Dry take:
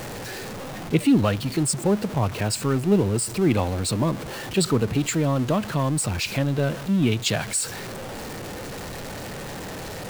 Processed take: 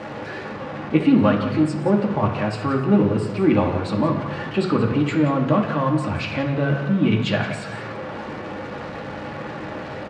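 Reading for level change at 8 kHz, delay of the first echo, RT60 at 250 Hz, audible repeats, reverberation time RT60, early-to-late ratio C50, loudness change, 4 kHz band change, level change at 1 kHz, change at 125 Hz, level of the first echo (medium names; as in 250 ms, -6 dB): under -15 dB, 177 ms, 1.5 s, 1, 1.2 s, 5.5 dB, +2.5 dB, -4.0 dB, +5.0 dB, +1.0 dB, -12.5 dB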